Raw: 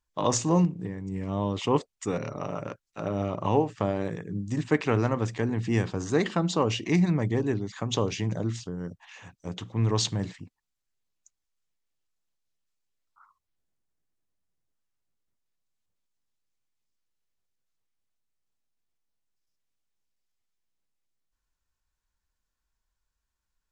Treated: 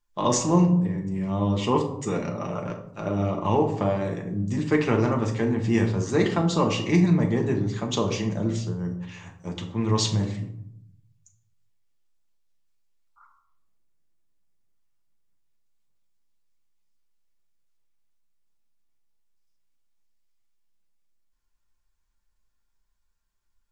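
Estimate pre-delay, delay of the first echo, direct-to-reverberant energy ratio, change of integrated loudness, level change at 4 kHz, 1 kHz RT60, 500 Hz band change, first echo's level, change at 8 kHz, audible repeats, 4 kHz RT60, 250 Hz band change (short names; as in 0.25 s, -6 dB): 5 ms, none, 1.0 dB, +3.5 dB, +2.0 dB, 0.70 s, +2.5 dB, none, +2.5 dB, none, 0.40 s, +4.5 dB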